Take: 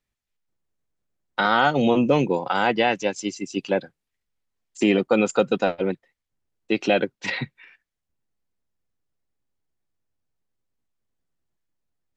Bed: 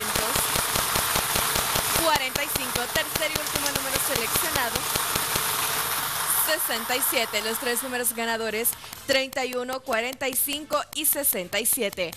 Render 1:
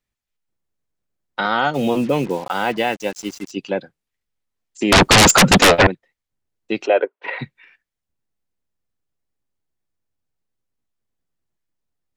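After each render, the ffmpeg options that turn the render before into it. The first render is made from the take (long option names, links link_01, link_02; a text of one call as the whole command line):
ffmpeg -i in.wav -filter_complex "[0:a]asplit=3[link_01][link_02][link_03];[link_01]afade=type=out:start_time=1.73:duration=0.02[link_04];[link_02]acrusher=bits=5:mix=0:aa=0.5,afade=type=in:start_time=1.73:duration=0.02,afade=type=out:start_time=3.5:duration=0.02[link_05];[link_03]afade=type=in:start_time=3.5:duration=0.02[link_06];[link_04][link_05][link_06]amix=inputs=3:normalize=0,asettb=1/sr,asplit=3[link_07][link_08][link_09];[link_07]atrim=end=4.924[link_10];[link_08]atrim=start=4.92:end=5.87,asetpts=PTS-STARTPTS,afade=type=in:duration=0.004:curve=qsin,afade=type=out:start_time=0.946:duration=0.004:curve=qsin,aeval=exprs='0.473*sin(PI/2*10*val(0)/0.473)':channel_layout=same[link_11];[link_09]atrim=start=5.866[link_12];[link_10][link_11]acrossfade=duration=0.004:curve1=hsin:curve2=qsin[link_13];[link_13][link_12]acrossfade=duration=0.004:curve1=qsin:curve2=hsin,asplit=3[link_14][link_15][link_16];[link_14]afade=type=out:start_time=6.85:duration=0.02[link_17];[link_15]highpass=frequency=380:width=0.5412,highpass=frequency=380:width=1.3066,equalizer=frequency=430:width_type=q:width=4:gain=8,equalizer=frequency=620:width_type=q:width=4:gain=6,equalizer=frequency=990:width_type=q:width=4:gain=7,equalizer=frequency=1400:width_type=q:width=4:gain=3,lowpass=frequency=2700:width=0.5412,lowpass=frequency=2700:width=1.3066,afade=type=in:start_time=6.85:duration=0.02,afade=type=out:start_time=7.38:duration=0.02[link_18];[link_16]afade=type=in:start_time=7.38:duration=0.02[link_19];[link_17][link_18][link_19]amix=inputs=3:normalize=0" out.wav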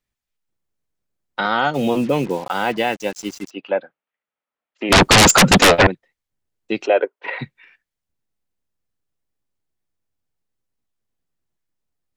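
ffmpeg -i in.wav -filter_complex "[0:a]asplit=3[link_01][link_02][link_03];[link_01]afade=type=out:start_time=3.49:duration=0.02[link_04];[link_02]highpass=330,equalizer=frequency=370:width_type=q:width=4:gain=-5,equalizer=frequency=600:width_type=q:width=4:gain=5,equalizer=frequency=860:width_type=q:width=4:gain=3,equalizer=frequency=1300:width_type=q:width=4:gain=6,lowpass=frequency=3000:width=0.5412,lowpass=frequency=3000:width=1.3066,afade=type=in:start_time=3.49:duration=0.02,afade=type=out:start_time=4.89:duration=0.02[link_05];[link_03]afade=type=in:start_time=4.89:duration=0.02[link_06];[link_04][link_05][link_06]amix=inputs=3:normalize=0" out.wav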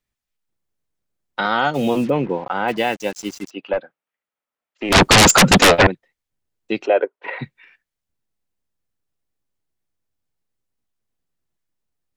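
ffmpeg -i in.wav -filter_complex "[0:a]asplit=3[link_01][link_02][link_03];[link_01]afade=type=out:start_time=2.09:duration=0.02[link_04];[link_02]lowpass=2200,afade=type=in:start_time=2.09:duration=0.02,afade=type=out:start_time=2.67:duration=0.02[link_05];[link_03]afade=type=in:start_time=2.67:duration=0.02[link_06];[link_04][link_05][link_06]amix=inputs=3:normalize=0,asettb=1/sr,asplit=3[link_07][link_08][link_09];[link_07]atrim=end=3.734[link_10];[link_08]atrim=start=3.73:end=4.95,asetpts=PTS-STARTPTS,afade=type=in:duration=0.004:curve=qsin,afade=type=out:start_time=1.216:duration=0.004:curve=qsin,aeval=exprs='(tanh(3.55*val(0)+0.25)-tanh(0.25))/3.55':channel_layout=same[link_11];[link_09]atrim=start=4.946[link_12];[link_10][link_11]acrossfade=duration=0.004:curve1=hsin:curve2=qsin[link_13];[link_13][link_12]acrossfade=duration=0.004:curve1=qsin:curve2=hsin,asettb=1/sr,asplit=3[link_14][link_15][link_16];[link_14]atrim=end=6.794[link_17];[link_15]atrim=start=6.79:end=7.43,asetpts=PTS-STARTPTS,afade=type=in:duration=0.004:curve=qsin,afade=type=out:start_time=0.636:duration=0.004:curve=qsin,highshelf=frequency=3500:gain=-9[link_18];[link_16]atrim=start=7.426[link_19];[link_17][link_18]acrossfade=duration=0.004:curve1=hsin:curve2=qsin[link_20];[link_20][link_19]acrossfade=duration=0.004:curve1=qsin:curve2=hsin" out.wav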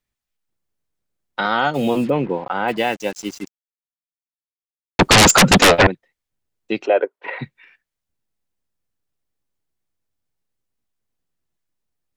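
ffmpeg -i in.wav -filter_complex "[0:a]asettb=1/sr,asplit=3[link_01][link_02][link_03];[link_01]atrim=end=1.564[link_04];[link_02]atrim=start=1.56:end=2.79,asetpts=PTS-STARTPTS,afade=type=in:duration=0.004:curve=qsin,afade=type=out:start_time=1.226:duration=0.004:curve=qsin,bandreject=frequency=5900:width=7.3[link_05];[link_03]atrim=start=2.786[link_06];[link_04][link_05]acrossfade=duration=0.004:curve1=hsin:curve2=qsin[link_07];[link_07][link_06]acrossfade=duration=0.004:curve1=qsin:curve2=hsin,asplit=3[link_08][link_09][link_10];[link_08]atrim=end=3.48,asetpts=PTS-STARTPTS,afade=type=out:start_time=3.476:duration=0.004:curve=hsin[link_11];[link_09]atrim=start=3.48:end=4.99,asetpts=PTS-STARTPTS,volume=0[link_12];[link_10]atrim=start=4.99,asetpts=PTS-STARTPTS,afade=type=in:duration=0.004:curve=hsin[link_13];[link_11][link_12][link_13]concat=n=3:v=0:a=1" out.wav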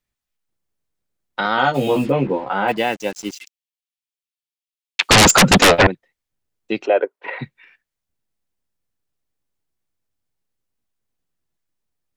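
ffmpeg -i in.wav -filter_complex "[0:a]asettb=1/sr,asplit=3[link_01][link_02][link_03];[link_01]atrim=end=1.564[link_04];[link_02]atrim=start=1.56:end=2.72,asetpts=PTS-STARTPTS,afade=type=in:duration=0.004:curve=qsin,afade=type=out:start_time=1.156:duration=0.004:curve=qsin,asplit=2[link_05][link_06];[link_06]adelay=15,volume=-3dB[link_07];[link_05][link_07]amix=inputs=2:normalize=0,atrim=end_sample=51156[link_08];[link_03]atrim=start=2.716[link_09];[link_04][link_08]acrossfade=duration=0.004:curve1=hsin:curve2=qsin[link_10];[link_10][link_09]acrossfade=duration=0.004:curve1=qsin:curve2=hsin,asettb=1/sr,asplit=3[link_11][link_12][link_13];[link_11]atrim=end=3.314[link_14];[link_12]atrim=start=3.31:end=5.09,asetpts=PTS-STARTPTS,afade=type=in:duration=0.004:curve=qsin,afade=type=out:start_time=1.776:duration=0.004:curve=qsin,highpass=frequency=2700:width_type=q:width=1.8[link_15];[link_13]atrim=start=5.086[link_16];[link_14][link_15]acrossfade=duration=0.004:curve1=hsin:curve2=qsin[link_17];[link_17][link_16]acrossfade=duration=0.004:curve1=qsin:curve2=hsin" out.wav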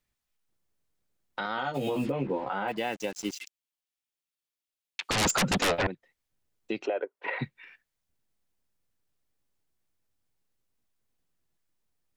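ffmpeg -i in.wav -af "acompressor=threshold=-18dB:ratio=6,alimiter=limit=-20.5dB:level=0:latency=1:release=415" out.wav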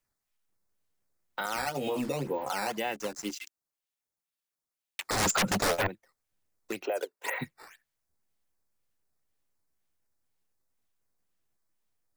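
ffmpeg -i in.wav -filter_complex "[0:a]acrossover=split=430|3900[link_01][link_02][link_03];[link_01]flanger=delay=9.2:depth=5.1:regen=30:speed=0.17:shape=triangular[link_04];[link_02]acrusher=samples=8:mix=1:aa=0.000001:lfo=1:lforange=12.8:lforate=2[link_05];[link_04][link_05][link_03]amix=inputs=3:normalize=0" out.wav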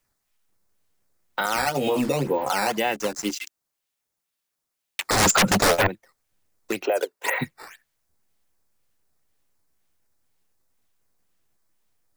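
ffmpeg -i in.wav -af "volume=8.5dB" out.wav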